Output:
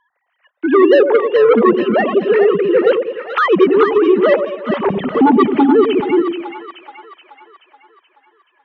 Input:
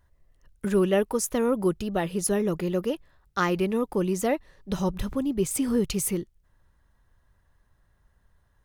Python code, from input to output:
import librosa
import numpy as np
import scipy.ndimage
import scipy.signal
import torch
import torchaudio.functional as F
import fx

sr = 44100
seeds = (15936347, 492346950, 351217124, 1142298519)

y = fx.sine_speech(x, sr)
y = fx.fold_sine(y, sr, drive_db=8, ceiling_db=-10.5)
y = fx.echo_split(y, sr, split_hz=670.0, low_ms=101, high_ms=428, feedback_pct=52, wet_db=-6.5)
y = F.gain(torch.from_numpy(y), 4.5).numpy()